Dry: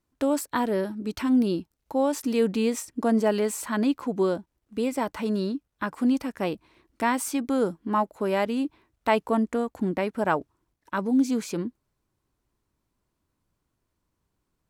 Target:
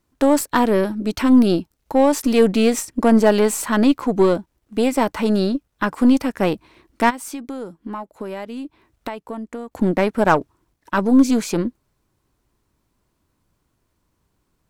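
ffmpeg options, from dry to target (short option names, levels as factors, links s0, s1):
-filter_complex "[0:a]asplit=3[s0][s1][s2];[s0]afade=t=out:st=7.09:d=0.02[s3];[s1]acompressor=threshold=0.0141:ratio=6,afade=t=in:st=7.09:d=0.02,afade=t=out:st=9.71:d=0.02[s4];[s2]afade=t=in:st=9.71:d=0.02[s5];[s3][s4][s5]amix=inputs=3:normalize=0,aeval=exprs='0.355*(cos(1*acos(clip(val(0)/0.355,-1,1)))-cos(1*PI/2))+0.0158*(cos(8*acos(clip(val(0)/0.355,-1,1)))-cos(8*PI/2))':c=same,volume=2.66"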